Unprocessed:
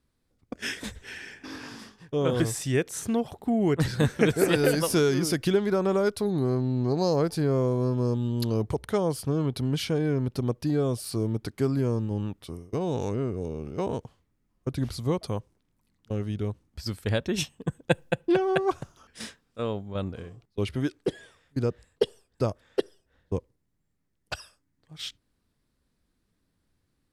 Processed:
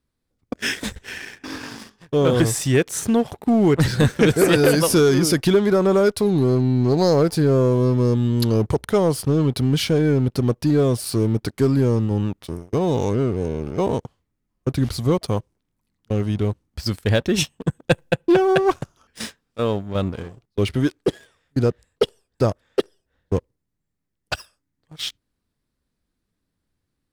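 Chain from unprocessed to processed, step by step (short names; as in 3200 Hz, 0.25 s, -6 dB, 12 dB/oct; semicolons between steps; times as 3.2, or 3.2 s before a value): sample leveller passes 2; gain +1 dB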